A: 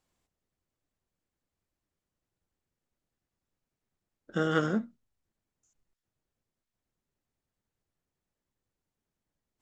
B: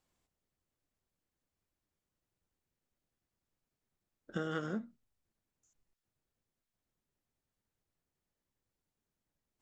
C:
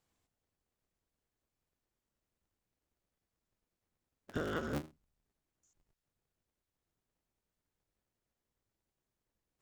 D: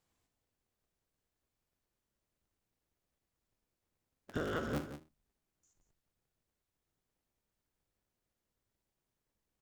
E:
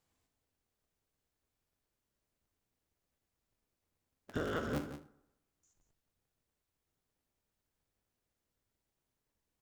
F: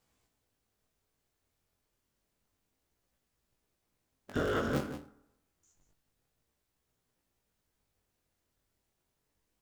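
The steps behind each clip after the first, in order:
compressor 4:1, threshold -32 dBFS, peak gain reduction 10.5 dB; gain -2 dB
cycle switcher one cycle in 3, inverted
tapped delay 59/175 ms -12/-10.5 dB
reverb RT60 0.95 s, pre-delay 6 ms, DRR 13.5 dB
chorus 0.29 Hz, delay 16.5 ms, depth 6.9 ms; gain +8 dB

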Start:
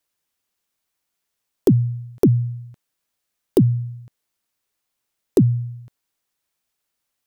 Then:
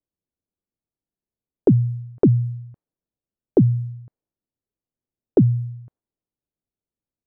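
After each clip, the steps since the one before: low-pass opened by the level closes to 370 Hz, open at -16.5 dBFS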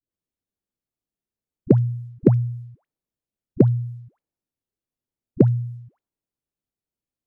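dispersion highs, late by 0.112 s, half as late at 650 Hz; short-mantissa float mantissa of 8-bit; gain -1 dB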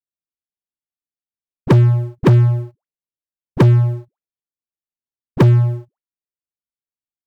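sample leveller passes 5; gain -4.5 dB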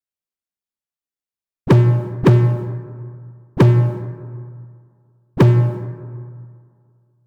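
plate-style reverb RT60 2.1 s, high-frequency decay 0.45×, DRR 9 dB

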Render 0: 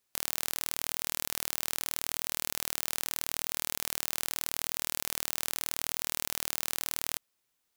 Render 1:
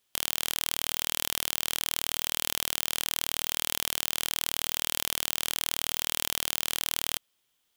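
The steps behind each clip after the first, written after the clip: bell 3200 Hz +9.5 dB 0.33 oct; gain +3 dB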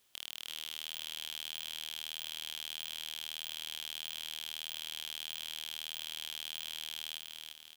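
limiter -10 dBFS, peak gain reduction 8.5 dB; soft clip -22.5 dBFS, distortion -3 dB; feedback echo 0.345 s, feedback 46%, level -4.5 dB; gain +4 dB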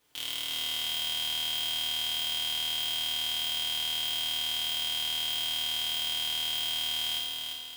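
FDN reverb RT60 0.97 s, low-frequency decay 0.75×, high-frequency decay 0.85×, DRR -5 dB; mismatched tape noise reduction decoder only; gain +3.5 dB

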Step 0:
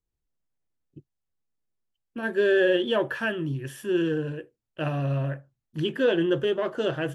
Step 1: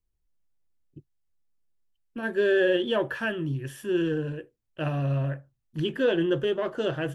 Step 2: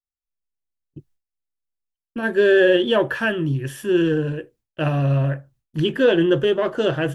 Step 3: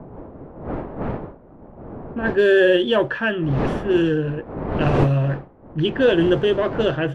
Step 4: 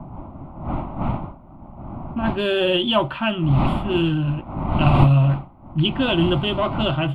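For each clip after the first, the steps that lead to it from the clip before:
low shelf 63 Hz +11 dB; gain -1.5 dB
expander -58 dBFS; gain +7.5 dB
wind noise 500 Hz -29 dBFS; low-pass opened by the level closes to 860 Hz, open at -12 dBFS
fixed phaser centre 1700 Hz, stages 6; gain +5.5 dB

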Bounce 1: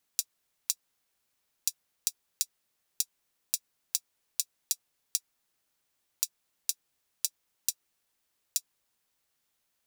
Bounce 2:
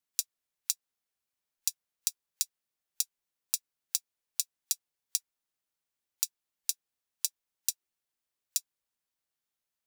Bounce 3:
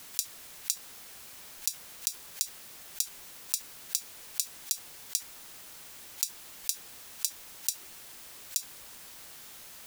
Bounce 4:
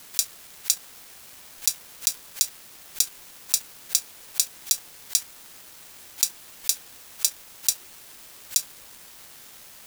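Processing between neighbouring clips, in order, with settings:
spectral noise reduction 11 dB
fast leveller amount 70%
sample leveller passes 2; gain +3 dB

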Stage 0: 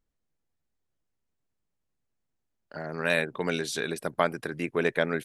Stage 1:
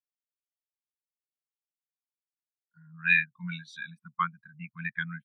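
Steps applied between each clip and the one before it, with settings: dynamic EQ 3000 Hz, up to +5 dB, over -42 dBFS, Q 1.2; elliptic band-stop 210–980 Hz; spectral expander 2.5:1; gain +1.5 dB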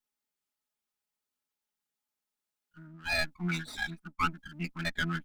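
minimum comb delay 4.8 ms; reverse; compressor 8:1, threshold -35 dBFS, peak gain reduction 15.5 dB; reverse; small resonant body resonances 270/850/1300 Hz, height 7 dB; gain +7 dB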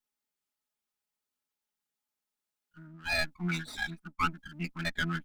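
nothing audible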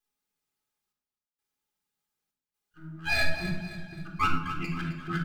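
step gate "xxxx..xxxx." 65 bpm -24 dB; on a send: feedback echo 0.262 s, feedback 43%, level -11 dB; on the sum: shoebox room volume 2300 m³, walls furnished, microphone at 3.8 m

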